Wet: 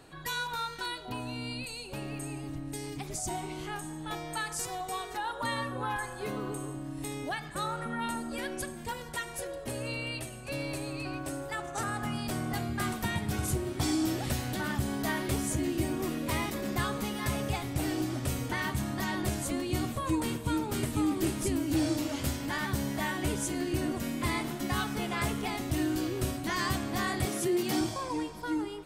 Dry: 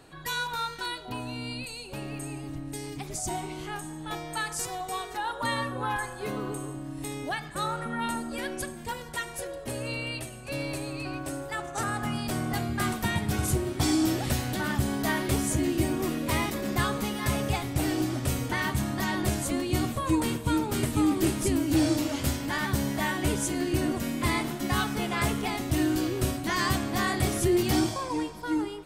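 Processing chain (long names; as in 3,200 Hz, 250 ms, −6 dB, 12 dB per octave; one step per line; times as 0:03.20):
0:27.25–0:27.81: high-pass filter 150 Hz 24 dB per octave
in parallel at −1 dB: downward compressor, threshold −33 dBFS, peak gain reduction 13 dB
on the sum: level −6.5 dB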